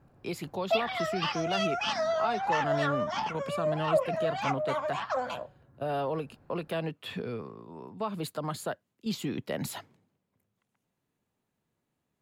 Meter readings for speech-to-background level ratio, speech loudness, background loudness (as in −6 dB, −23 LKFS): −4.5 dB, −35.5 LKFS, −31.0 LKFS